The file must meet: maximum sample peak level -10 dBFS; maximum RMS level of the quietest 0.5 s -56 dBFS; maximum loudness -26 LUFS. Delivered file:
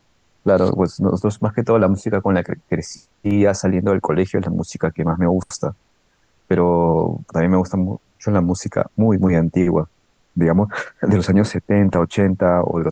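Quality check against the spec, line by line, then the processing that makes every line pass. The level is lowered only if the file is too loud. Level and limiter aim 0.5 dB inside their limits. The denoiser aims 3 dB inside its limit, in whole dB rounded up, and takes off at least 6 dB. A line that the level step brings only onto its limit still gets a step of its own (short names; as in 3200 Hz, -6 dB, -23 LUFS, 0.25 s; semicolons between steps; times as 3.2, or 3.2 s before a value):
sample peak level -5.5 dBFS: fail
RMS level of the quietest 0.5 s -61 dBFS: OK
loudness -18.5 LUFS: fail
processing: gain -8 dB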